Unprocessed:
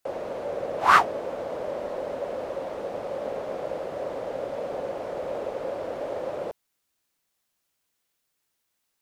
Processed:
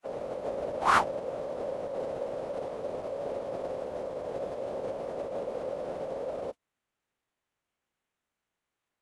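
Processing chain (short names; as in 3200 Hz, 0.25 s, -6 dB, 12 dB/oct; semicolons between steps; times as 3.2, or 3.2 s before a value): median filter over 9 samples; formant-preserving pitch shift -11.5 st; dynamic EQ 1700 Hz, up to -5 dB, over -47 dBFS, Q 0.81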